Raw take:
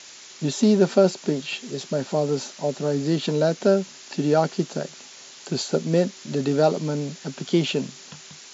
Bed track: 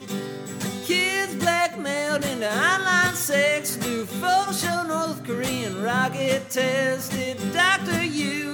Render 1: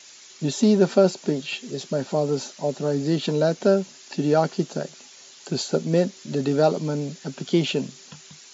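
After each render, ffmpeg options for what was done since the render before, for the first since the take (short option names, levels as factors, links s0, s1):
-af "afftdn=nr=6:nf=-45"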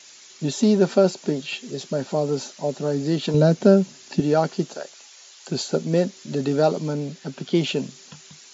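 -filter_complex "[0:a]asettb=1/sr,asplit=3[s0][s1][s2];[s0]atrim=end=3.344[s3];[s1]atrim=start=3.34:end=4.2,asetpts=PTS-STARTPTS,afade=t=in:d=0.004:c=qsin,afade=t=out:st=0.856:d=0.004:c=qsin,equalizer=f=110:t=o:w=2.6:g=11[s4];[s2]atrim=start=4.196[s5];[s3][s4]acrossfade=d=0.004:c1=hsin:c2=qsin[s6];[s6][s5]acrossfade=d=0.004:c1=qsin:c2=hsin,asettb=1/sr,asplit=3[s7][s8][s9];[s7]atrim=end=4.744[s10];[s8]atrim=start=4.74:end=5.48,asetpts=PTS-STARTPTS,afade=t=in:d=0.004:c=qsin,afade=t=out:st=0.736:d=0.004:c=qsin,highpass=580[s11];[s9]atrim=start=5.476[s12];[s10][s11]acrossfade=d=0.004:c1=hsin:c2=qsin[s13];[s13][s12]acrossfade=d=0.004:c1=qsin:c2=hsin,asettb=1/sr,asplit=3[s14][s15][s16];[s14]atrim=end=6.934[s17];[s15]atrim=start=6.93:end=7.55,asetpts=PTS-STARTPTS,afade=t=in:d=0.004:c=qsin,afade=t=out:st=0.616:d=0.004:c=qsin,acrossover=split=5200[s18][s19];[s19]acompressor=threshold=0.002:ratio=4:attack=1:release=60[s20];[s18][s20]amix=inputs=2:normalize=0[s21];[s16]atrim=start=7.546[s22];[s17][s21]acrossfade=d=0.004:c1=hsin:c2=qsin[s23];[s23][s22]acrossfade=d=0.004:c1=qsin:c2=hsin"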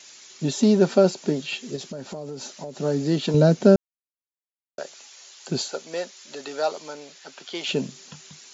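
-filter_complex "[0:a]asettb=1/sr,asplit=3[s0][s1][s2];[s0]atrim=end=1.764[s3];[s1]atrim=start=1.76:end=2.8,asetpts=PTS-STARTPTS,afade=t=in:d=0.004:c=qsin,afade=t=out:st=1.036:d=0.004:c=qsin,acompressor=threshold=0.0316:ratio=10:attack=3.2:release=140:knee=1:detection=peak[s4];[s2]atrim=start=2.796[s5];[s3][s4]acrossfade=d=0.004:c1=hsin:c2=qsin[s6];[s6][s5]acrossfade=d=0.004:c1=qsin:c2=hsin,asettb=1/sr,asplit=3[s7][s8][s9];[s7]atrim=end=5.684[s10];[s8]atrim=start=5.68:end=7.68,asetpts=PTS-STARTPTS,afade=t=in:d=0.004:c=qsin,afade=t=out:st=1.996:d=0.004:c=qsin,highpass=770[s11];[s9]atrim=start=7.676[s12];[s10][s11]acrossfade=d=0.004:c1=hsin:c2=qsin[s13];[s13][s12]acrossfade=d=0.004:c1=qsin:c2=hsin,asplit=3[s14][s15][s16];[s14]atrim=end=3.76,asetpts=PTS-STARTPTS,afade=t=out:st=3.756:d=0.004:c=hsin[s17];[s15]atrim=start=3.76:end=4.78,asetpts=PTS-STARTPTS,volume=0[s18];[s16]atrim=start=4.78,asetpts=PTS-STARTPTS,afade=t=in:d=0.004:c=hsin[s19];[s17][s18][s19]concat=n=3:v=0:a=1"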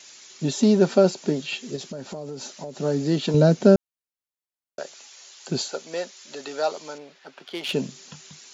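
-filter_complex "[0:a]asettb=1/sr,asplit=3[s0][s1][s2];[s0]atrim=end=6.984[s3];[s1]atrim=start=6.98:end=7.73,asetpts=PTS-STARTPTS,afade=t=in:d=0.004:c=qsin,afade=t=out:st=0.746:d=0.004:c=qsin,adynamicsmooth=sensitivity=3.5:basefreq=2900[s4];[s2]atrim=start=7.726[s5];[s3][s4]acrossfade=d=0.004:c1=hsin:c2=qsin[s6];[s6][s5]acrossfade=d=0.004:c1=qsin:c2=hsin"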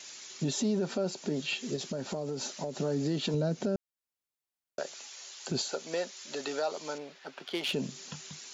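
-af "acompressor=threshold=0.0282:ratio=1.5,alimiter=limit=0.0794:level=0:latency=1:release=72"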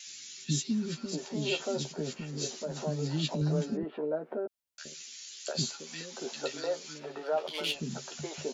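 -filter_complex "[0:a]asplit=2[s0][s1];[s1]adelay=13,volume=0.562[s2];[s0][s2]amix=inputs=2:normalize=0,acrossover=split=310|1700[s3][s4][s5];[s3]adelay=70[s6];[s4]adelay=700[s7];[s6][s7][s5]amix=inputs=3:normalize=0"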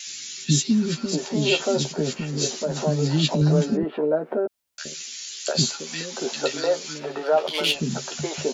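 -af "volume=3.35"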